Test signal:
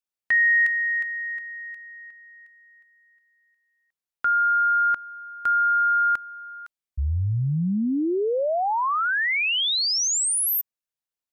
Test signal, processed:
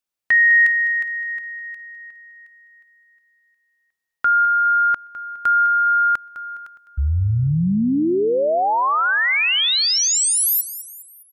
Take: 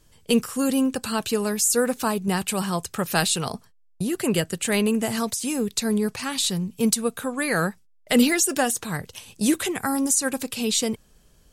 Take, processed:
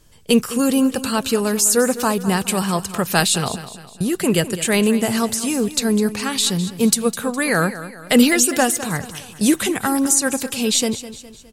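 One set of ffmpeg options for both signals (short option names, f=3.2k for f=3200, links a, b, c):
-af "aecho=1:1:206|412|618|824:0.2|0.0898|0.0404|0.0182,volume=5dB"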